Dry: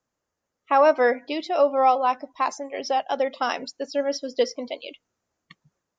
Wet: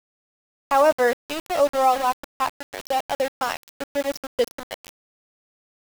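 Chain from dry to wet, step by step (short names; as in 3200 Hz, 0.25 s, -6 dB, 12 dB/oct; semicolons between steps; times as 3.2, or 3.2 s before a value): sample gate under -25.5 dBFS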